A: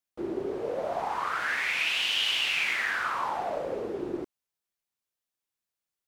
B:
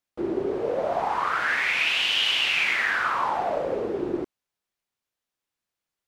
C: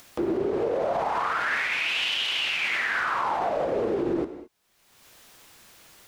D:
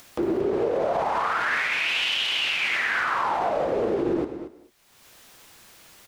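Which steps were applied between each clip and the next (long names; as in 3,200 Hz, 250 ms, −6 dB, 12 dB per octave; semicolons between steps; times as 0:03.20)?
high-shelf EQ 6,300 Hz −8.5 dB; level +5.5 dB
brickwall limiter −23.5 dBFS, peak gain reduction 12 dB; upward compression, threshold −34 dBFS; reverb whose tail is shaped and stops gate 240 ms flat, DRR 9.5 dB; level +4.5 dB
single-tap delay 230 ms −12.5 dB; level +1.5 dB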